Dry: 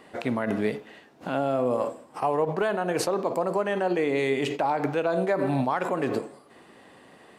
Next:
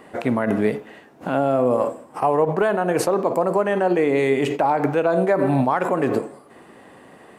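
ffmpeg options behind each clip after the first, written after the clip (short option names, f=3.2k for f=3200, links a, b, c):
-af "equalizer=f=4.2k:t=o:w=1.5:g=-7.5,volume=6.5dB"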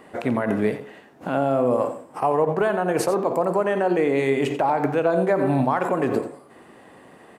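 -filter_complex "[0:a]asplit=2[a][b];[b]adelay=87.46,volume=-11dB,highshelf=f=4k:g=-1.97[c];[a][c]amix=inputs=2:normalize=0,volume=-2dB"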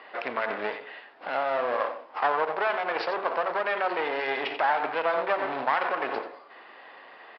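-af "crystalizer=i=3.5:c=0,aresample=11025,aeval=exprs='clip(val(0),-1,0.0237)':c=same,aresample=44100,highpass=730,lowpass=2.9k,volume=2.5dB"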